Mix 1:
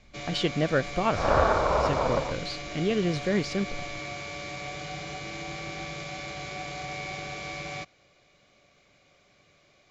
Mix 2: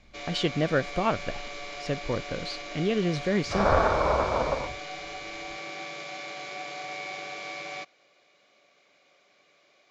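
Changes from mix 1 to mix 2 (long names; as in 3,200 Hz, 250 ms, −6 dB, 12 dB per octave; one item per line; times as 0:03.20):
first sound: add band-pass filter 340–6,700 Hz
second sound: entry +2.35 s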